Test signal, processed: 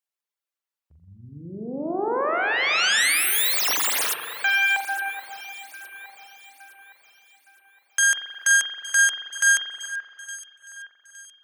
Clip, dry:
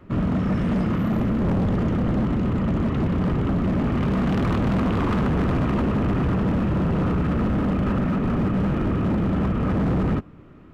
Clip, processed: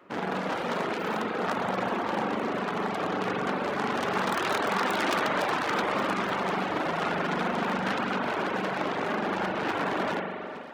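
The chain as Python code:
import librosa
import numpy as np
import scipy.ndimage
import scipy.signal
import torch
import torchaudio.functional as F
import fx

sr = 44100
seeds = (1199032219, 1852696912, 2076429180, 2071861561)

p1 = fx.self_delay(x, sr, depth_ms=0.43)
p2 = scipy.signal.sosfilt(scipy.signal.butter(2, 470.0, 'highpass', fs=sr, output='sos'), p1)
p3 = p2 + fx.echo_alternate(p2, sr, ms=432, hz=2300.0, feedback_pct=64, wet_db=-12.0, dry=0)
p4 = fx.rev_spring(p3, sr, rt60_s=2.0, pass_ms=(42,), chirp_ms=75, drr_db=-0.5)
y = fx.dereverb_blind(p4, sr, rt60_s=0.64)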